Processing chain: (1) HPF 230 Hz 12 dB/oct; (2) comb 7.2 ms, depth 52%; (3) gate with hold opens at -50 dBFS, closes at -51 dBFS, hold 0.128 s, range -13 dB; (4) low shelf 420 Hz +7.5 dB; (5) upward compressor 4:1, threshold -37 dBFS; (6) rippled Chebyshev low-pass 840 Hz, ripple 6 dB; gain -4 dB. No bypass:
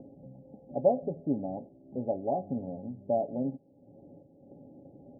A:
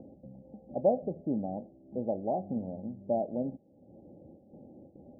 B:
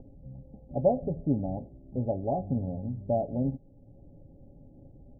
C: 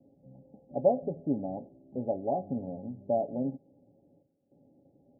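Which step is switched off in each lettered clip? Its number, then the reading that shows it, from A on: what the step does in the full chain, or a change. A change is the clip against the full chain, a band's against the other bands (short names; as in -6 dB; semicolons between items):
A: 2, crest factor change -1.5 dB; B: 1, 125 Hz band +9.5 dB; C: 5, momentary loudness spread change -10 LU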